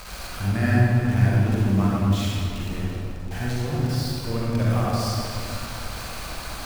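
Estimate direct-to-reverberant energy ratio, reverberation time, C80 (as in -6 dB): -7.0 dB, 2.7 s, -2.5 dB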